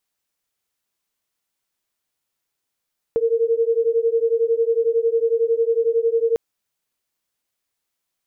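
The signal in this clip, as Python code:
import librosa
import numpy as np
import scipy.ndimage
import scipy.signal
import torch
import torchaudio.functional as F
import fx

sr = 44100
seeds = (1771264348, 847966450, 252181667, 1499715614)

y = fx.two_tone_beats(sr, length_s=3.2, hz=454.0, beat_hz=11.0, level_db=-19.0)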